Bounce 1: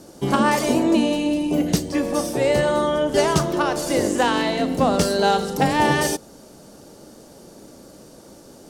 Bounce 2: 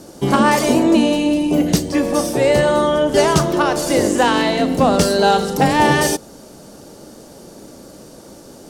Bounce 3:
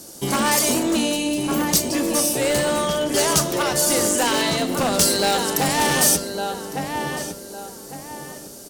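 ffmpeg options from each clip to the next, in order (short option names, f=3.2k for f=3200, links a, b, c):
-af "acontrast=27"
-filter_complex "[0:a]asplit=2[a][b];[b]adelay=1156,lowpass=f=2k:p=1,volume=-6dB,asplit=2[c][d];[d]adelay=1156,lowpass=f=2k:p=1,volume=0.35,asplit=2[e][f];[f]adelay=1156,lowpass=f=2k:p=1,volume=0.35,asplit=2[g][h];[h]adelay=1156,lowpass=f=2k:p=1,volume=0.35[i];[a][c][e][g][i]amix=inputs=5:normalize=0,volume=9.5dB,asoftclip=hard,volume=-9.5dB,crystalizer=i=4.5:c=0,volume=-7.5dB"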